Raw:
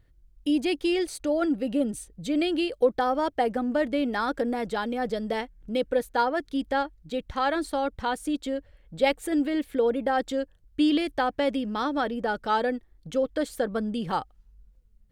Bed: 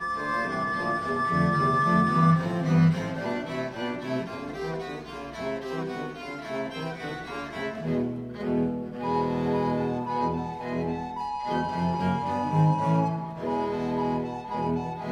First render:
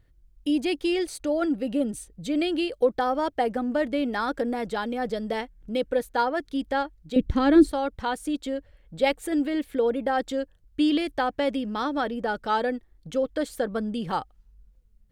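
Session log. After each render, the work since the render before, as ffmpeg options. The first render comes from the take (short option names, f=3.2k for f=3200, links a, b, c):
-filter_complex "[0:a]asettb=1/sr,asplit=3[a][b][c];[a]atrim=end=7.164[d];[b]atrim=start=7.16:end=7.72,asetpts=PTS-STARTPTS,afade=t=in:d=0.004:c=qsin,afade=t=out:st=0.556:d=0.004:c=qsin,lowshelf=f=490:t=q:w=1.5:g=12.5[e];[c]atrim=start=7.716[f];[d][e]acrossfade=d=0.004:c1=hsin:c2=qsin[g];[g][f]acrossfade=d=0.004:c1=qsin:c2=hsin"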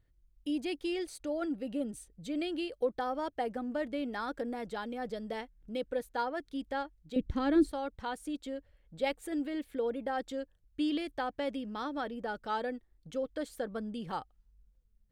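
-af "volume=-9.5dB"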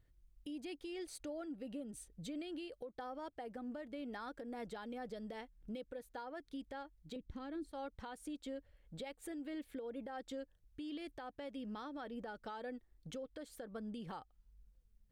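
-af "acompressor=threshold=-36dB:ratio=5,alimiter=level_in=13dB:limit=-24dB:level=0:latency=1:release=389,volume=-13dB"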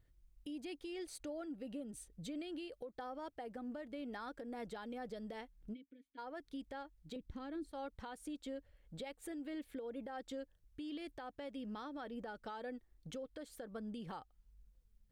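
-filter_complex "[0:a]asplit=3[a][b][c];[a]afade=t=out:st=5.73:d=0.02[d];[b]asplit=3[e][f][g];[e]bandpass=f=270:t=q:w=8,volume=0dB[h];[f]bandpass=f=2.29k:t=q:w=8,volume=-6dB[i];[g]bandpass=f=3.01k:t=q:w=8,volume=-9dB[j];[h][i][j]amix=inputs=3:normalize=0,afade=t=in:st=5.73:d=0.02,afade=t=out:st=6.17:d=0.02[k];[c]afade=t=in:st=6.17:d=0.02[l];[d][k][l]amix=inputs=3:normalize=0"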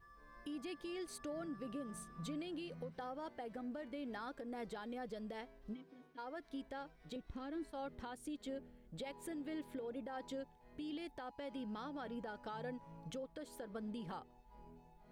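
-filter_complex "[1:a]volume=-33dB[a];[0:a][a]amix=inputs=2:normalize=0"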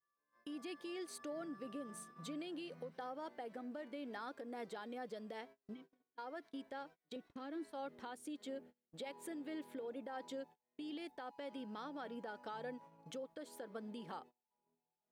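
-af "highpass=240,agate=range=-27dB:threshold=-57dB:ratio=16:detection=peak"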